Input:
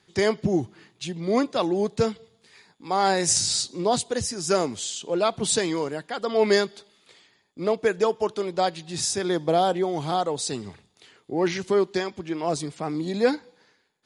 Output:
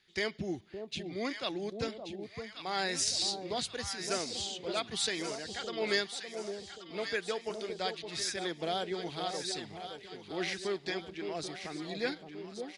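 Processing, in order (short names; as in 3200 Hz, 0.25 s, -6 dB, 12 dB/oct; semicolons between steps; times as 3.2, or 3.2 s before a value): tempo 1.1×; graphic EQ 125/250/500/1000/2000/4000/8000 Hz -10/-5/-6/-9/+4/+4/-8 dB; echo with dull and thin repeats by turns 0.565 s, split 850 Hz, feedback 70%, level -6 dB; gain -6 dB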